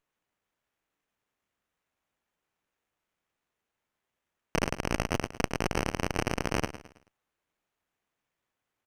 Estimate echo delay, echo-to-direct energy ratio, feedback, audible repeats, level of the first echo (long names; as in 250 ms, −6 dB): 108 ms, −12.5 dB, 39%, 3, −13.0 dB